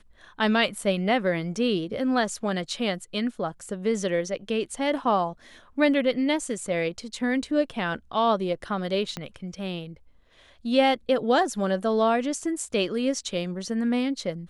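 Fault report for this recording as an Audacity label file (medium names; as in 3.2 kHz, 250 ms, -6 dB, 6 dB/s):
9.170000	9.170000	pop -17 dBFS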